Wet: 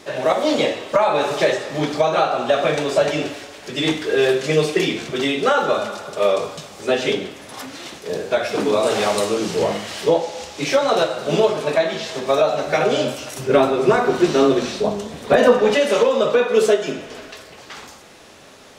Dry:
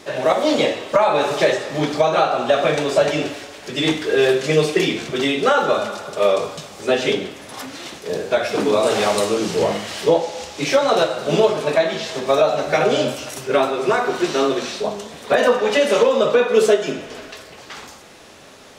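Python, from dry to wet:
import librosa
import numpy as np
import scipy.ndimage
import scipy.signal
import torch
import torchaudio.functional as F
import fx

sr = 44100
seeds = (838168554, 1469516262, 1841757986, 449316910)

y = fx.low_shelf(x, sr, hz=390.0, db=10.0, at=(13.39, 15.75))
y = y * librosa.db_to_amplitude(-1.0)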